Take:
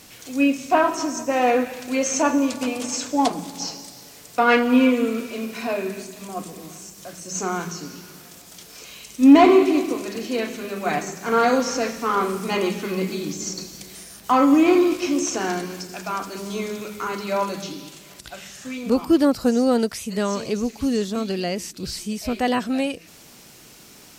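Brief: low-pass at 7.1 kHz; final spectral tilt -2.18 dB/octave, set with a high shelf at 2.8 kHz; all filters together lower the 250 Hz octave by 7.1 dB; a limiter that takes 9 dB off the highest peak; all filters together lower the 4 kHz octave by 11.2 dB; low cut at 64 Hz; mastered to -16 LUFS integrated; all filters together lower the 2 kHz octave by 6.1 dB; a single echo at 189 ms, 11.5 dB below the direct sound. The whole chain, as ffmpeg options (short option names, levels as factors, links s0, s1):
-af "highpass=64,lowpass=7100,equalizer=f=250:t=o:g=-8.5,equalizer=f=2000:t=o:g=-3,highshelf=f=2800:g=-9,equalizer=f=4000:t=o:g=-6,alimiter=limit=0.168:level=0:latency=1,aecho=1:1:189:0.266,volume=3.98"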